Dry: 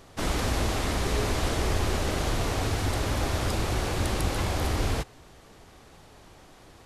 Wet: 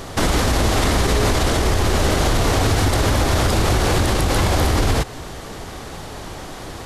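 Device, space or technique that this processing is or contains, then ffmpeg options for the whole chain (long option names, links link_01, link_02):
mastering chain: -af "equalizer=frequency=2500:width_type=o:width=0.32:gain=-2.5,acompressor=threshold=-30dB:ratio=2.5,alimiter=level_in=26.5dB:limit=-1dB:release=50:level=0:latency=1,volume=-7.5dB"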